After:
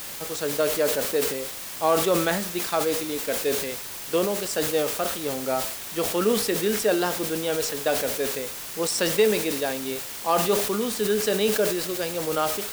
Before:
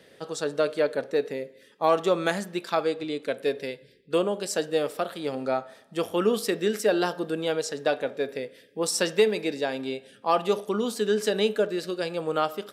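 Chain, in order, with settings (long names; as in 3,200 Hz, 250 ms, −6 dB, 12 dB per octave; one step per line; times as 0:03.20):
bit-depth reduction 6 bits, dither triangular
level that may fall only so fast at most 57 dB per second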